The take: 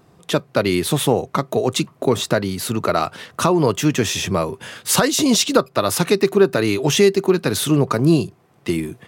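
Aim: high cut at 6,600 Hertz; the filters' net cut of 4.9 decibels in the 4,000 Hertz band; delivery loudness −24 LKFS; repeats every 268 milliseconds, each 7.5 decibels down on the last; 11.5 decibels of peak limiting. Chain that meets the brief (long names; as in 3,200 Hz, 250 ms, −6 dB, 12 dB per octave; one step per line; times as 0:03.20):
low-pass filter 6,600 Hz
parametric band 4,000 Hz −5.5 dB
brickwall limiter −14 dBFS
repeating echo 268 ms, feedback 42%, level −7.5 dB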